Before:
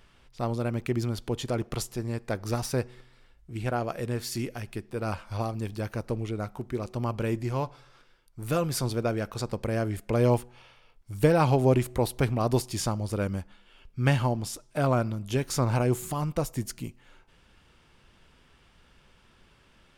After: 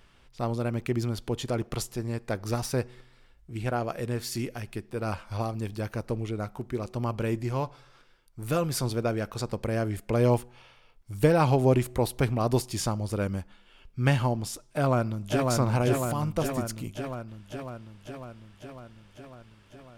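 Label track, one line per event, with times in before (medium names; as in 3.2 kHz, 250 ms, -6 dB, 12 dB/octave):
14.630000	15.490000	echo throw 550 ms, feedback 70%, level -2.5 dB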